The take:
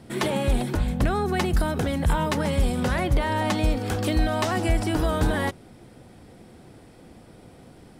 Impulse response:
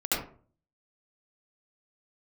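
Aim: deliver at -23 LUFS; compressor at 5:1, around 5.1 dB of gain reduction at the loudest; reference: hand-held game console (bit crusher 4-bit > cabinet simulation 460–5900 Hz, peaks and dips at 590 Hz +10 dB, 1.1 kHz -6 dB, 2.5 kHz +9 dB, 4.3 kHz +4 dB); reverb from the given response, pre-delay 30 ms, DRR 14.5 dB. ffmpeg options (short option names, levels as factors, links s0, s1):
-filter_complex "[0:a]acompressor=threshold=0.0794:ratio=5,asplit=2[s0][s1];[1:a]atrim=start_sample=2205,adelay=30[s2];[s1][s2]afir=irnorm=-1:irlink=0,volume=0.0596[s3];[s0][s3]amix=inputs=2:normalize=0,acrusher=bits=3:mix=0:aa=0.000001,highpass=460,equalizer=f=590:t=q:w=4:g=10,equalizer=f=1100:t=q:w=4:g=-6,equalizer=f=2500:t=q:w=4:g=9,equalizer=f=4300:t=q:w=4:g=4,lowpass=f=5900:w=0.5412,lowpass=f=5900:w=1.3066,volume=1.19"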